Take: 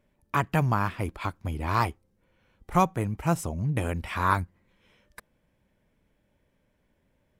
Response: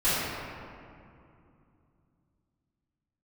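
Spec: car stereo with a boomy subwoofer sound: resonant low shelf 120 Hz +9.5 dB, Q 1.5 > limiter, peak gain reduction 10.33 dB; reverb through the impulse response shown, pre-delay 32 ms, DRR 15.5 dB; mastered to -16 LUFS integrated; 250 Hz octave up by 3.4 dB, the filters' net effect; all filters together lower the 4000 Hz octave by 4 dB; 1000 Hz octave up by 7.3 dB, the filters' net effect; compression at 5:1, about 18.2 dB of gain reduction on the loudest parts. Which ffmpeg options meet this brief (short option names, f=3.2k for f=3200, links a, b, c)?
-filter_complex "[0:a]equalizer=f=250:t=o:g=7.5,equalizer=f=1k:t=o:g=8.5,equalizer=f=4k:t=o:g=-6,acompressor=threshold=-32dB:ratio=5,asplit=2[a][b];[1:a]atrim=start_sample=2205,adelay=32[c];[b][c]afir=irnorm=-1:irlink=0,volume=-30.5dB[d];[a][d]amix=inputs=2:normalize=0,lowshelf=f=120:t=q:w=1.5:g=9.5,volume=22.5dB,alimiter=limit=-5dB:level=0:latency=1"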